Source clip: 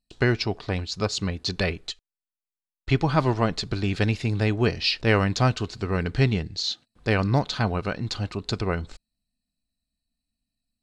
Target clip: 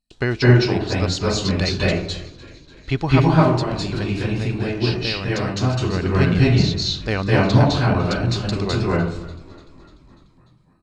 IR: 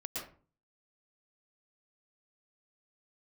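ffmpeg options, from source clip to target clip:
-filter_complex "[0:a]asettb=1/sr,asplit=3[link_01][link_02][link_03];[link_01]atrim=end=3.264[link_04];[link_02]atrim=start=3.26:end=5.57,asetpts=PTS-STARTPTS,afade=type=in:duration=0.004:curve=qsin,afade=type=out:start_time=2.306:duration=0.004:curve=qsin,acompressor=threshold=-26dB:ratio=4[link_05];[link_03]atrim=start=5.566[link_06];[link_04][link_05]acrossfade=duration=0.004:curve1=hsin:curve2=qsin[link_07];[link_07][link_06]acrossfade=duration=0.004:curve1=qsin:curve2=hsin,asplit=7[link_08][link_09][link_10][link_11][link_12][link_13][link_14];[link_09]adelay=295,afreqshift=-42,volume=-20dB[link_15];[link_10]adelay=590,afreqshift=-84,volume=-23.9dB[link_16];[link_11]adelay=885,afreqshift=-126,volume=-27.8dB[link_17];[link_12]adelay=1180,afreqshift=-168,volume=-31.6dB[link_18];[link_13]adelay=1475,afreqshift=-210,volume=-35.5dB[link_19];[link_14]adelay=1770,afreqshift=-252,volume=-39.4dB[link_20];[link_08][link_15][link_16][link_17][link_18][link_19][link_20]amix=inputs=7:normalize=0[link_21];[1:a]atrim=start_sample=2205,asetrate=23373,aresample=44100[link_22];[link_21][link_22]afir=irnorm=-1:irlink=0,volume=1.5dB"

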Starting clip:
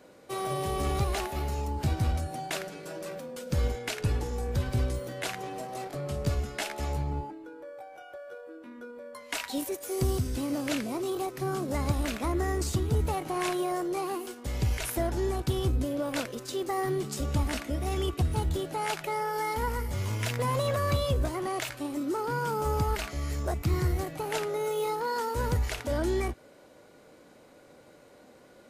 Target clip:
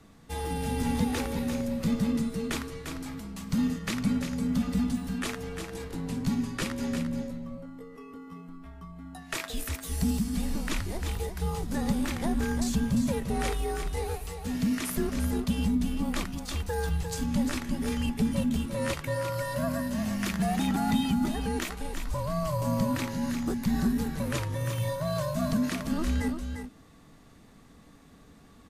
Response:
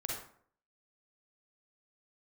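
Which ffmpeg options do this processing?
-af "afreqshift=-310,aecho=1:1:349:0.422"

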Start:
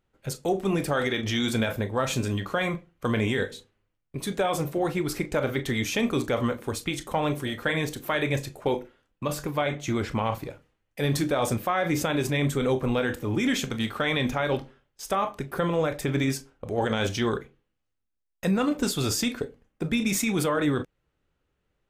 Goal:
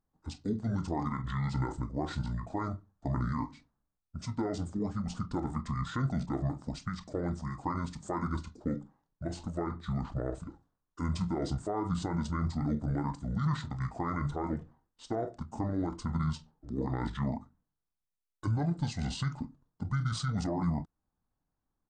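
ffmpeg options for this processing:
ffmpeg -i in.wav -af "equalizer=frequency=250:width_type=o:width=1:gain=4,equalizer=frequency=2000:width_type=o:width=1:gain=4,equalizer=frequency=4000:width_type=o:width=1:gain=-10,asetrate=25476,aresample=44100,atempo=1.73107,volume=-8.5dB" out.wav

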